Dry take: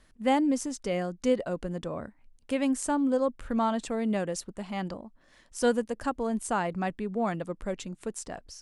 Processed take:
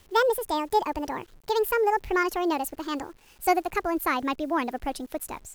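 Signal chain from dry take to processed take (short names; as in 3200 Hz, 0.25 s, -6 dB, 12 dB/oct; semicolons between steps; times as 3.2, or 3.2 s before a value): speed glide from 173% -> 138%; bit-crush 10-bit; gain +3 dB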